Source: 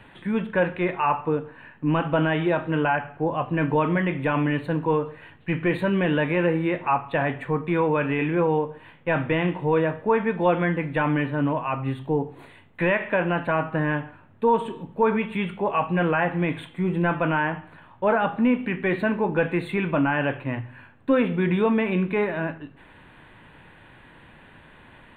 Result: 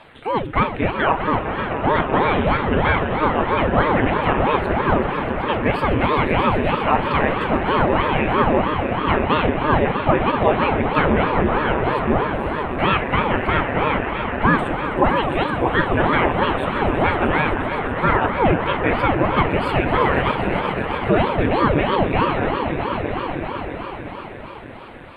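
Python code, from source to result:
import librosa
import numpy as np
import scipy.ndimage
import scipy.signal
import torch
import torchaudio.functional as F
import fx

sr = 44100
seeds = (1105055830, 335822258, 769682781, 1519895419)

y = fx.echo_swell(x, sr, ms=127, loudest=5, wet_db=-11.5)
y = fx.ring_lfo(y, sr, carrier_hz=420.0, swing_pct=85, hz=3.1)
y = y * librosa.db_to_amplitude(6.0)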